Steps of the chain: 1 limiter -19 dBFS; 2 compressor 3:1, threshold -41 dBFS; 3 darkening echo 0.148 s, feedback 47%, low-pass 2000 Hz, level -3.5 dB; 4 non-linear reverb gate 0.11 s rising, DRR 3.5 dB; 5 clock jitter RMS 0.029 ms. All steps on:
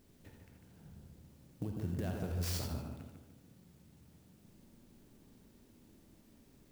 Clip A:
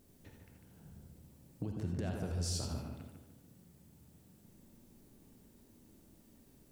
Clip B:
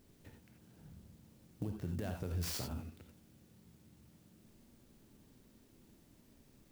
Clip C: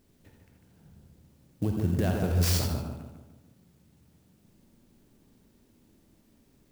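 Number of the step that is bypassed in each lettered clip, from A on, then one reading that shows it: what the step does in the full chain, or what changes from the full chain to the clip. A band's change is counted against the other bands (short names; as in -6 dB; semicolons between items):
5, 8 kHz band +3.5 dB; 3, crest factor change +1.5 dB; 2, mean gain reduction 5.0 dB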